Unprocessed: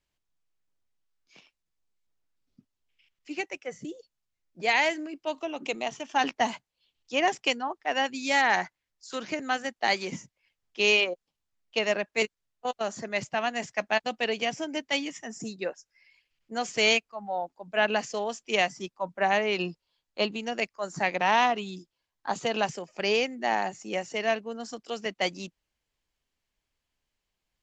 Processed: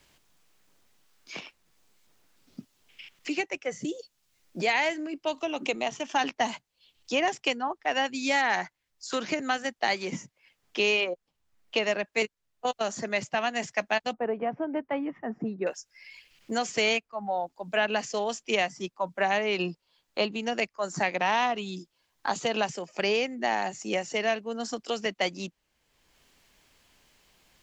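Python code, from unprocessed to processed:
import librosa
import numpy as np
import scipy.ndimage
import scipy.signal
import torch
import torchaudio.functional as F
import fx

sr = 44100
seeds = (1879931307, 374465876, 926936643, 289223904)

y = fx.lowpass(x, sr, hz=1300.0, slope=24, at=(14.13, 15.67))
y = fx.band_squash(y, sr, depth_pct=70)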